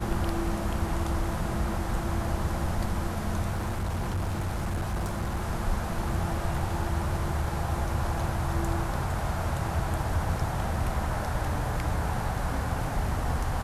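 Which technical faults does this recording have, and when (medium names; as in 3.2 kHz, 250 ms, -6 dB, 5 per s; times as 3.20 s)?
3.51–5.40 s: clipped -25.5 dBFS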